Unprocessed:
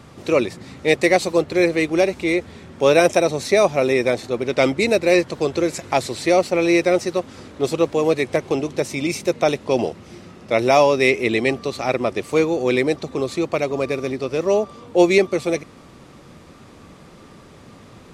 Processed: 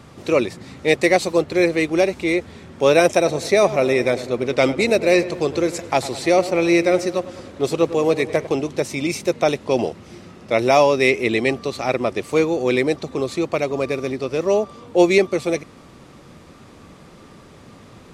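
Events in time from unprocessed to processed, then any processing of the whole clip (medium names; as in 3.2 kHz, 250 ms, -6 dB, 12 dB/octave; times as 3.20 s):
3.08–8.47 s: filtered feedback delay 100 ms, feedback 63%, level -14 dB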